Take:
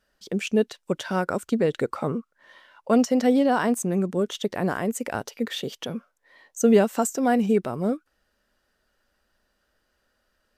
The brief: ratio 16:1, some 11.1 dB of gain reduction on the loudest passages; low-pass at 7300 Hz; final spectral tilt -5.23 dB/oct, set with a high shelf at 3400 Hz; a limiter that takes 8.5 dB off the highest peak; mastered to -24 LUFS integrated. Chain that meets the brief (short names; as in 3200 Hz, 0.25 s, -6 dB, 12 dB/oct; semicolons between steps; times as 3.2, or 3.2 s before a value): LPF 7300 Hz; high shelf 3400 Hz -9 dB; compressor 16:1, threshold -24 dBFS; gain +9.5 dB; limiter -13.5 dBFS